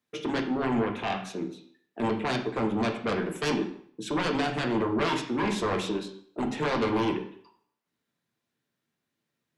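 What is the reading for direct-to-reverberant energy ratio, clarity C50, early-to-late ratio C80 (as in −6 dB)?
3.0 dB, 8.5 dB, 12.0 dB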